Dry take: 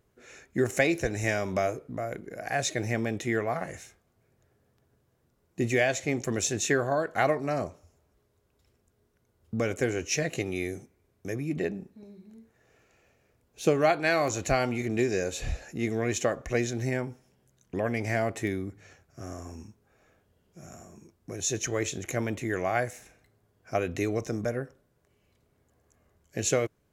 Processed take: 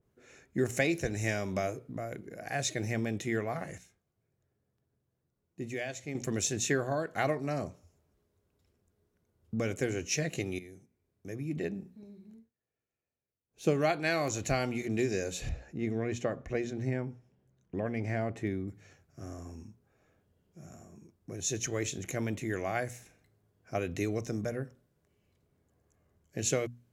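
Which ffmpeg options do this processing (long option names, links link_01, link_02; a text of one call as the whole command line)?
ffmpeg -i in.wav -filter_complex "[0:a]asettb=1/sr,asplit=3[link_01][link_02][link_03];[link_01]atrim=end=15.494[link_04];[link_02]atrim=start=15.49:end=18.68,asetpts=PTS-STARTPTS,afade=type=in:duration=0.004:curve=qsin,afade=type=out:start_time=3.186:duration=0.004:curve=qsin,lowpass=frequency=1700:poles=1[link_05];[link_03]atrim=start=18.676[link_06];[link_04][link_05]acrossfade=duration=0.004:curve1=hsin:curve2=qsin[link_07];[link_07][link_06]acrossfade=duration=0.004:curve1=qsin:curve2=hsin,asplit=6[link_08][link_09][link_10][link_11][link_12][link_13];[link_08]atrim=end=3.782[link_14];[link_09]atrim=start=3.778:end=6.152,asetpts=PTS-STARTPTS,volume=-7.5dB[link_15];[link_10]atrim=start=6.148:end=10.59,asetpts=PTS-STARTPTS,afade=type=out:start_time=4.438:duration=0.004:curve=hsin:silence=0.16788[link_16];[link_11]atrim=start=10.59:end=12.5,asetpts=PTS-STARTPTS,afade=type=in:duration=1.2:silence=0.16788,afade=type=out:start_time=1.74:duration=0.17:silence=0.0707946[link_17];[link_12]atrim=start=12.5:end=13.48,asetpts=PTS-STARTPTS,volume=-23dB[link_18];[link_13]atrim=start=13.48,asetpts=PTS-STARTPTS,afade=type=in:duration=0.17:silence=0.0707946[link_19];[link_14][link_15]acrossfade=duration=0.004:curve1=hsin:curve2=hsin[link_20];[link_16][link_17][link_18][link_19]concat=n=4:v=0:a=1[link_21];[link_20][link_21]acrossfade=duration=0.004:curve1=hsin:curve2=hsin,equalizer=frequency=150:width_type=o:width=2.6:gain=7,bandreject=frequency=60:width_type=h:width=6,bandreject=frequency=120:width_type=h:width=6,bandreject=frequency=180:width_type=h:width=6,bandreject=frequency=240:width_type=h:width=6,adynamicequalizer=threshold=0.00794:dfrequency=1900:dqfactor=0.7:tfrequency=1900:tqfactor=0.7:attack=5:release=100:ratio=0.375:range=2.5:mode=boostabove:tftype=highshelf,volume=-7.5dB" out.wav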